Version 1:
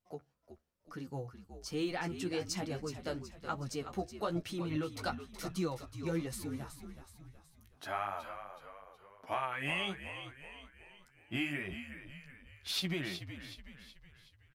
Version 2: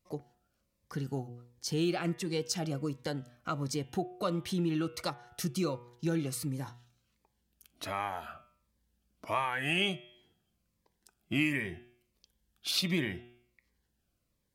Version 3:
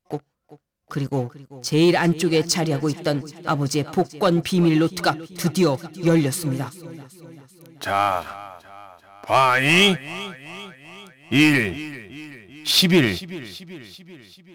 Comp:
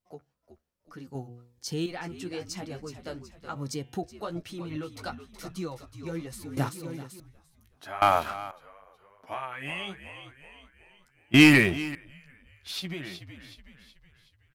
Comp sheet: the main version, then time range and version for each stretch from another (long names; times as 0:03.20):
1
0:01.15–0:01.86: punch in from 2
0:03.56–0:04.03: punch in from 2
0:06.57–0:07.20: punch in from 3
0:08.02–0:08.51: punch in from 3
0:11.34–0:11.95: punch in from 3